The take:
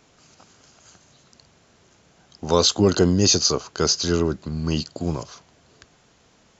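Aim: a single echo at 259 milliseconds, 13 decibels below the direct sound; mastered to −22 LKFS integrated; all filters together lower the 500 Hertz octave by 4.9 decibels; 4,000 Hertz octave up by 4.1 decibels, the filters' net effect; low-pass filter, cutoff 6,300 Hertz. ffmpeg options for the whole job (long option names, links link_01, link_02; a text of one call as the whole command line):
ffmpeg -i in.wav -af "lowpass=6300,equalizer=frequency=500:width_type=o:gain=-6.5,equalizer=frequency=4000:width_type=o:gain=6,aecho=1:1:259:0.224,volume=-2.5dB" out.wav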